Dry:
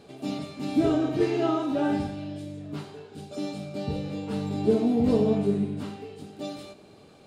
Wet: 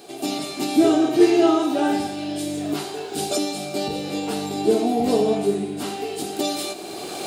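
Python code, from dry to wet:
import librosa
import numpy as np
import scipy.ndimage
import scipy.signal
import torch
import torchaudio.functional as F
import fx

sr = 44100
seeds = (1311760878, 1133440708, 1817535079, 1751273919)

y = fx.recorder_agc(x, sr, target_db=-20.5, rise_db_per_s=16.0, max_gain_db=30)
y = fx.riaa(y, sr, side='recording')
y = fx.small_body(y, sr, hz=(350.0, 720.0), ring_ms=45, db=12)
y = y * librosa.db_to_amplitude(4.5)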